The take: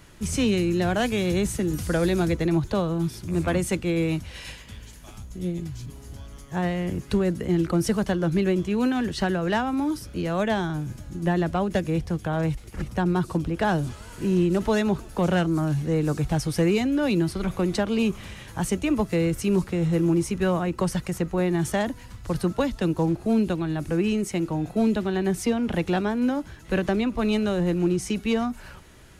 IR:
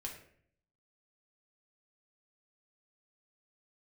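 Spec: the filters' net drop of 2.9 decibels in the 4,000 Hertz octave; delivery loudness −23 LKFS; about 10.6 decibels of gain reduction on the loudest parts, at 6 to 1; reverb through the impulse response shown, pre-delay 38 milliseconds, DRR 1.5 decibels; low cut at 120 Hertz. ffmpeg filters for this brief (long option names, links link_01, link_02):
-filter_complex "[0:a]highpass=120,equalizer=frequency=4000:width_type=o:gain=-4,acompressor=threshold=-30dB:ratio=6,asplit=2[link_01][link_02];[1:a]atrim=start_sample=2205,adelay=38[link_03];[link_02][link_03]afir=irnorm=-1:irlink=0,volume=0.5dB[link_04];[link_01][link_04]amix=inputs=2:normalize=0,volume=9dB"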